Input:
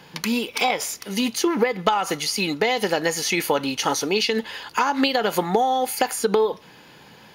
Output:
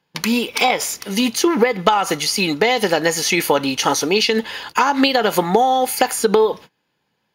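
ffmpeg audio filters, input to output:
-af "agate=range=0.0398:threshold=0.0112:ratio=16:detection=peak,volume=1.78"

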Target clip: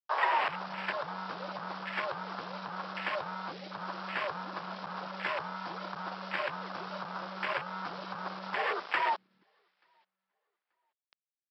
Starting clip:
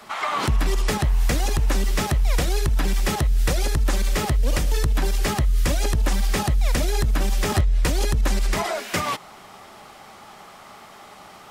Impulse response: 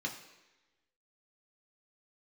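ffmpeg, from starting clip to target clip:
-filter_complex "[0:a]asplit=2[s0][s1];[s1]asoftclip=type=tanh:threshold=0.0531,volume=0.316[s2];[s0][s2]amix=inputs=2:normalize=0,acompressor=threshold=0.0891:ratio=12,afreqshift=-230,aresample=11025,acrusher=bits=4:mix=0:aa=0.000001,aresample=44100,asplit=2[s3][s4];[s4]adelay=883,lowpass=f=2000:p=1,volume=0.075,asplit=2[s5][s6];[s6]adelay=883,lowpass=f=2000:p=1,volume=0.29[s7];[s3][s5][s7]amix=inputs=3:normalize=0,afwtdn=0.0316,highpass=780"

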